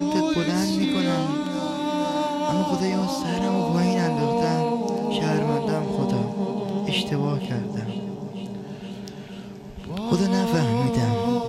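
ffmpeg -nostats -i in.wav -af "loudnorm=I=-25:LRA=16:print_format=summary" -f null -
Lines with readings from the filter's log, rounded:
Input Integrated:    -24.0 LUFS
Input True Peak:     -10.7 dBTP
Input LRA:             3.8 LU
Input Threshold:     -34.6 LUFS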